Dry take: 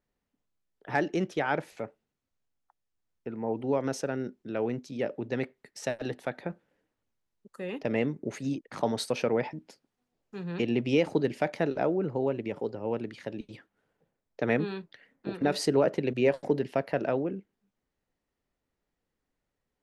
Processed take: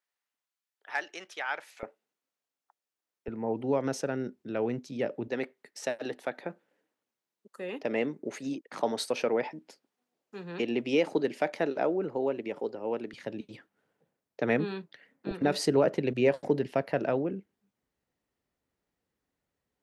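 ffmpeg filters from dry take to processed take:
-af "asetnsamples=n=441:p=0,asendcmd='1.83 highpass f 370;3.28 highpass f 87;5.28 highpass f 260;13.13 highpass f 120;15.31 highpass f 57',highpass=1.1k"

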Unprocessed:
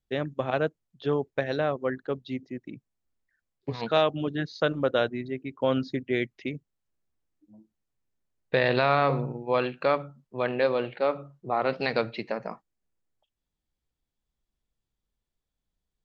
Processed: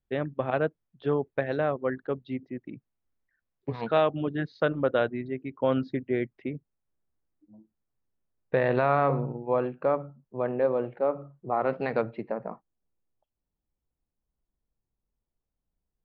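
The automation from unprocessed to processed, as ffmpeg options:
-af "asetnsamples=n=441:p=0,asendcmd='6.04 lowpass f 1500;9.54 lowpass f 1000;11.22 lowpass f 1500;12.02 lowpass f 1100',lowpass=2.3k"

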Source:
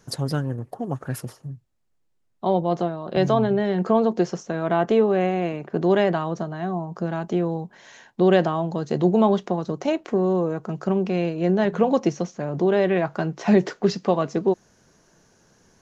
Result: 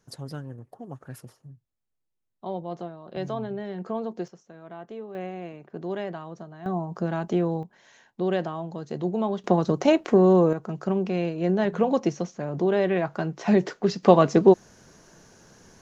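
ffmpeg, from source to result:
-af "asetnsamples=n=441:p=0,asendcmd='4.28 volume volume -20dB;5.15 volume volume -12.5dB;6.66 volume volume -1dB;7.63 volume volume -8.5dB;9.44 volume volume 4dB;10.53 volume volume -3dB;14.03 volume volume 5.5dB',volume=-11.5dB"

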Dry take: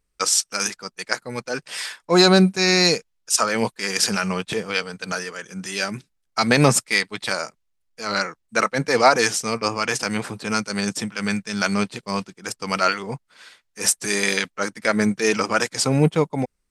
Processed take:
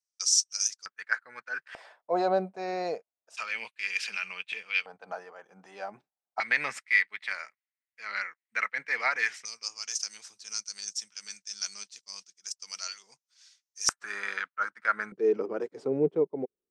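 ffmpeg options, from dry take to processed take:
-af "asetnsamples=n=441:p=0,asendcmd='0.86 bandpass f 1600;1.75 bandpass f 660;3.37 bandpass f 2500;4.86 bandpass f 760;6.4 bandpass f 2000;9.45 bandpass f 5900;13.89 bandpass f 1400;15.12 bandpass f 400',bandpass=f=5.9k:t=q:w=4.5:csg=0"

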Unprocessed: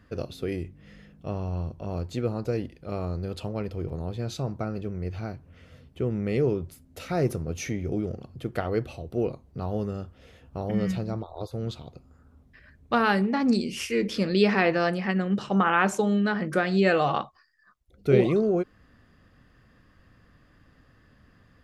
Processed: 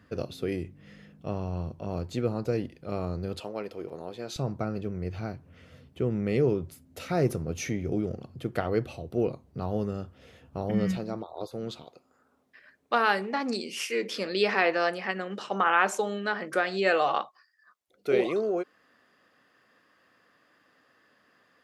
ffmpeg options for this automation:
-af "asetnsamples=n=441:p=0,asendcmd='3.4 highpass f 340;4.36 highpass f 87;10.97 highpass f 210;11.84 highpass f 430',highpass=94"

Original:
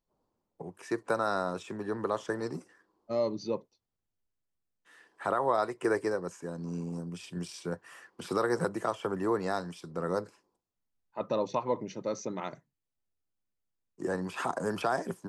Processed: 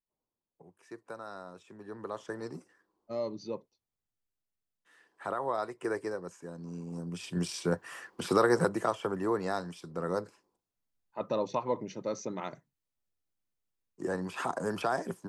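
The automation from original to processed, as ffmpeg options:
-af "volume=6dB,afade=t=in:st=1.65:d=0.78:silence=0.354813,afade=t=in:st=6.86:d=0.61:silence=0.281838,afade=t=out:st=8.1:d=1.07:silence=0.446684"

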